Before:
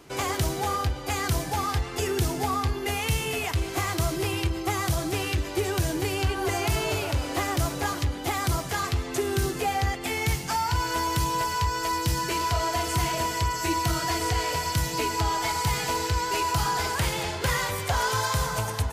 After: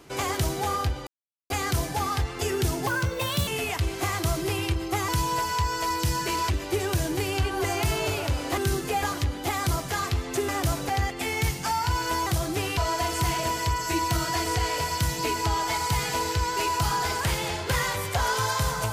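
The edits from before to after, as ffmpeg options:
-filter_complex "[0:a]asplit=12[s0][s1][s2][s3][s4][s5][s6][s7][s8][s9][s10][s11];[s0]atrim=end=1.07,asetpts=PTS-STARTPTS,afade=t=out:st=1.066:d=0.004:c=hsin,apad=pad_dur=0.43[s12];[s1]atrim=start=1.07:end=2.444,asetpts=PTS-STARTPTS,afade=t=in:d=0.004:c=hsin[s13];[s2]atrim=start=2.44:end=3.22,asetpts=PTS-STARTPTS,asetrate=56889,aresample=44100,atrim=end_sample=26665,asetpts=PTS-STARTPTS[s14];[s3]atrim=start=3.216:end=4.832[s15];[s4]atrim=start=11.108:end=12.522[s16];[s5]atrim=start=5.338:end=7.422[s17];[s6]atrim=start=9.288:end=9.742[s18];[s7]atrim=start=7.828:end=9.292[s19];[s8]atrim=start=7.418:end=7.832[s20];[s9]atrim=start=9.738:end=11.112[s21];[s10]atrim=start=4.828:end=5.342[s22];[s11]atrim=start=12.518[s23];[s12][s13]concat=n=2:v=0:a=1[s24];[s24][s14]acrossfade=d=0.004:c1=hsin:c2=hsin[s25];[s25][s15]acrossfade=d=0.004:c1=hsin:c2=hsin[s26];[s26][s16]acrossfade=d=0.004:c1=hsin:c2=hsin[s27];[s27][s17]acrossfade=d=0.004:c1=hsin:c2=hsin[s28];[s28][s18]acrossfade=d=0.004:c1=hsin:c2=hsin[s29];[s29][s19]acrossfade=d=0.004:c1=hsin:c2=hsin[s30];[s30][s20]acrossfade=d=0.004:c1=hsin:c2=hsin[s31];[s31][s21]acrossfade=d=0.004:c1=hsin:c2=hsin[s32];[s32][s22]acrossfade=d=0.004:c1=hsin:c2=hsin[s33];[s33][s23]acrossfade=d=0.004:c1=hsin:c2=hsin"

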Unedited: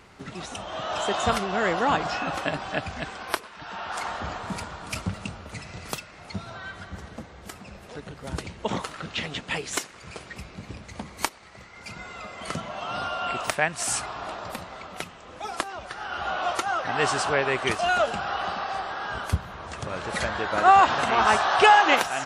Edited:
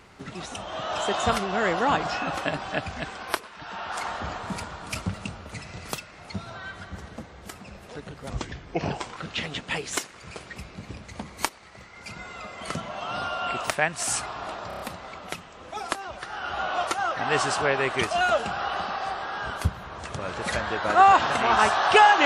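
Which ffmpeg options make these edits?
-filter_complex "[0:a]asplit=7[s0][s1][s2][s3][s4][s5][s6];[s0]atrim=end=8.304[s7];[s1]atrim=start=8.3:end=8.97,asetpts=PTS-STARTPTS,asetrate=33957,aresample=44100[s8];[s2]atrim=start=8.966:end=14.512[s9];[s3]atrim=start=14.478:end=14.512[s10];[s4]atrim=start=14.478:end=14.512[s11];[s5]atrim=start=14.478:end=14.512[s12];[s6]atrim=start=14.478[s13];[s7][s8]acrossfade=d=0.004:c1=hsin:c2=hsin[s14];[s14][s9]acrossfade=d=0.004:c1=hsin:c2=hsin[s15];[s15][s10]acrossfade=d=0.004:c1=hsin:c2=hsin[s16];[s16][s11]acrossfade=d=0.004:c1=hsin:c2=hsin[s17];[s17][s12]acrossfade=d=0.004:c1=hsin:c2=hsin[s18];[s18][s13]acrossfade=d=0.004:c1=hsin:c2=hsin"

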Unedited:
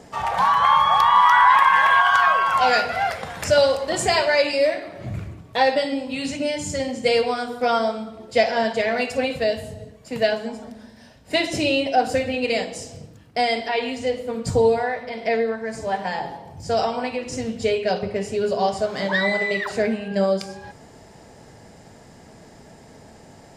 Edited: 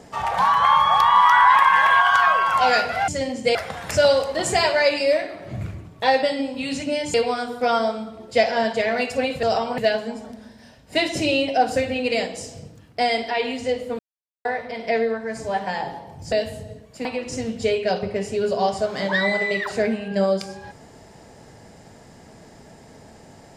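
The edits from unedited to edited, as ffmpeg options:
-filter_complex "[0:a]asplit=10[s0][s1][s2][s3][s4][s5][s6][s7][s8][s9];[s0]atrim=end=3.082[s10];[s1]atrim=start=6.668:end=7.142[s11];[s2]atrim=start=3.078:end=6.672[s12];[s3]atrim=start=7.138:end=9.432[s13];[s4]atrim=start=16.698:end=17.052[s14];[s5]atrim=start=10.158:end=14.37,asetpts=PTS-STARTPTS,afade=t=out:st=4.208:d=0.004:c=hsin[s15];[s6]atrim=start=14.37:end=14.83,asetpts=PTS-STARTPTS,volume=0[s16];[s7]atrim=start=14.83:end=16.702,asetpts=PTS-STARTPTS,afade=t=in:d=0.004:c=hsin[s17];[s8]atrim=start=9.428:end=10.162[s18];[s9]atrim=start=17.048[s19];[s10][s11]acrossfade=d=0.004:c1=hsin:c2=hsin[s20];[s20][s12]acrossfade=d=0.004:c1=hsin:c2=hsin[s21];[s21][s13]acrossfade=d=0.004:c1=hsin:c2=hsin[s22];[s22][s14]acrossfade=d=0.004:c1=hsin:c2=hsin[s23];[s15][s16][s17]concat=n=3:v=0:a=1[s24];[s23][s24]acrossfade=d=0.004:c1=hsin:c2=hsin[s25];[s25][s18]acrossfade=d=0.004:c1=hsin:c2=hsin[s26];[s26][s19]acrossfade=d=0.004:c1=hsin:c2=hsin"

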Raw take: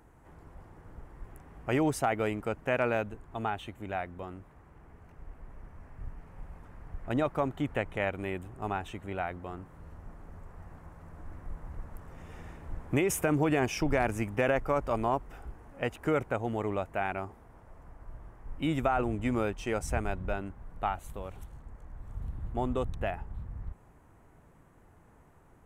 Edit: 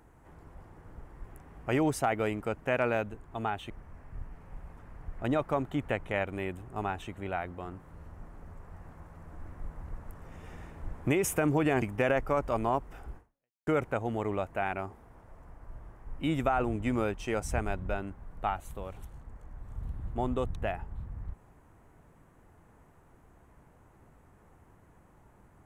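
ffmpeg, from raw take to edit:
-filter_complex "[0:a]asplit=4[s0][s1][s2][s3];[s0]atrim=end=3.702[s4];[s1]atrim=start=5.558:end=13.682[s5];[s2]atrim=start=14.208:end=16.06,asetpts=PTS-STARTPTS,afade=t=out:st=1.352:d=0.5:c=exp[s6];[s3]atrim=start=16.06,asetpts=PTS-STARTPTS,afade=t=in:d=0.004:c=hsin[s7];[s4][s5]acrossfade=d=0.004:c1=hsin:c2=hsin[s8];[s6][s7]concat=n=2:v=0:a=1[s9];[s8][s9]acrossfade=d=0.004:c1=hsin:c2=hsin"

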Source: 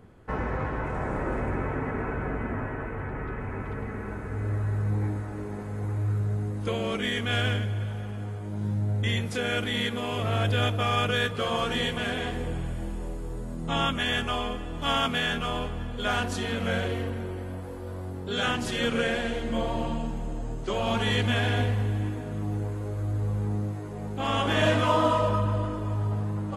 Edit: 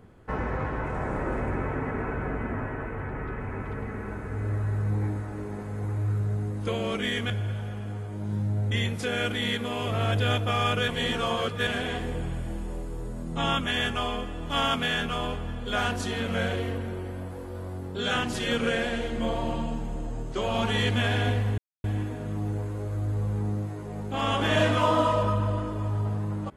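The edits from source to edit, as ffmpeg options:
-filter_complex "[0:a]asplit=5[s0][s1][s2][s3][s4];[s0]atrim=end=7.302[s5];[s1]atrim=start=7.618:end=11.202[s6];[s2]atrim=start=11.198:end=11.992,asetpts=PTS-STARTPTS,areverse[s7];[s3]atrim=start=11.988:end=21.9,asetpts=PTS-STARTPTS,afade=t=out:st=9.908:d=0.004:c=hsin,apad=pad_dur=0.26[s8];[s4]atrim=start=21.9,asetpts=PTS-STARTPTS,afade=t=in:d=0.004:c=hsin[s9];[s5][s6]acrossfade=d=0.004:c1=hsin:c2=hsin[s10];[s10][s7]acrossfade=d=0.004:c1=hsin:c2=hsin[s11];[s8][s9]concat=n=2:v=0:a=1[s12];[s11][s12]acrossfade=d=0.004:c1=hsin:c2=hsin"

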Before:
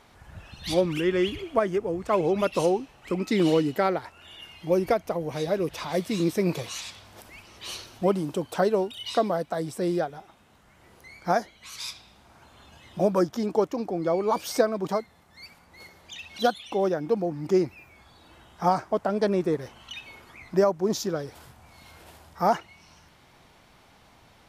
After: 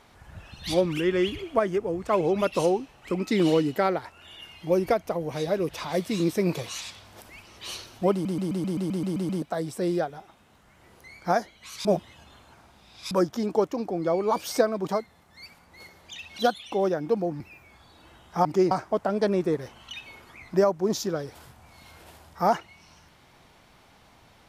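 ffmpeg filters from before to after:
-filter_complex "[0:a]asplit=16[s0][s1][s2][s3][s4][s5][s6][s7][s8][s9][s10][s11][s12][s13][s14][s15];[s0]atrim=end=8.252[s16];[s1]atrim=start=8.118:end=8.252[s17];[s2]atrim=start=8.118:end=8.252[s18];[s3]atrim=start=8.118:end=8.252[s19];[s4]atrim=start=8.118:end=8.252[s20];[s5]atrim=start=8.118:end=8.252[s21];[s6]atrim=start=8.118:end=8.252[s22];[s7]atrim=start=8.118:end=8.252[s23];[s8]atrim=start=8.118:end=8.252[s24];[s9]atrim=start=8.118:end=8.252[s25];[s10]atrim=start=9.418:end=11.852[s26];[s11]atrim=start=11.848:end=13.112,asetpts=PTS-STARTPTS,areverse[s27];[s12]atrim=start=13.108:end=17.402[s28];[s13]atrim=start=17.658:end=18.712[s29];[s14]atrim=start=17.398:end=17.662[s30];[s15]atrim=start=18.708[s31];[s16][s17]acrossfade=d=0.004:c1=hsin:c2=hsin[s32];[s32][s18]acrossfade=d=0.004:c1=hsin:c2=hsin[s33];[s33][s19]acrossfade=d=0.004:c1=hsin:c2=hsin[s34];[s34][s20]acrossfade=d=0.004:c1=hsin:c2=hsin[s35];[s35][s21]acrossfade=d=0.004:c1=hsin:c2=hsin[s36];[s36][s22]acrossfade=d=0.004:c1=hsin:c2=hsin[s37];[s37][s23]acrossfade=d=0.004:c1=hsin:c2=hsin[s38];[s38][s24]acrossfade=d=0.004:c1=hsin:c2=hsin[s39];[s39][s25]acrossfade=d=0.004:c1=hsin:c2=hsin[s40];[s40][s26]acrossfade=d=0.004:c1=hsin:c2=hsin[s41];[s41][s27]acrossfade=d=0.004:c1=hsin:c2=hsin[s42];[s42][s28]acrossfade=d=0.004:c1=hsin:c2=hsin[s43];[s43][s29]acrossfade=d=0.004:c1=hsin:c2=hsin[s44];[s44][s30]acrossfade=d=0.004:c1=hsin:c2=hsin[s45];[s45][s31]acrossfade=d=0.004:c1=hsin:c2=hsin"

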